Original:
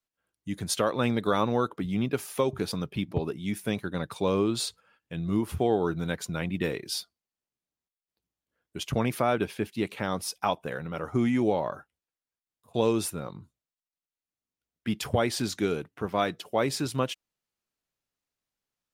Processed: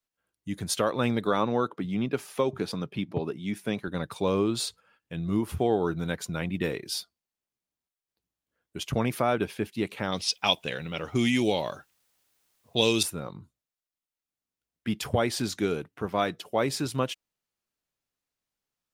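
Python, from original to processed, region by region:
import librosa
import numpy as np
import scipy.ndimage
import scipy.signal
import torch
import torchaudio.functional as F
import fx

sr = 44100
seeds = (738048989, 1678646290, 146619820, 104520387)

y = fx.chain(x, sr, fx.highpass(hz=120.0, slope=12),
    fx.high_shelf(hz=8500.0, db=-10.0), at=(1.25, 3.88))
y = fx.chain(y, sr, fx.env_lowpass(base_hz=830.0, full_db=-24.5),
    fx.high_shelf_res(hz=2000.0, db=12.5, q=1.5),
    fx.quant_dither(seeds[0], bits=12, dither='triangular'), at=(10.11, 13.03))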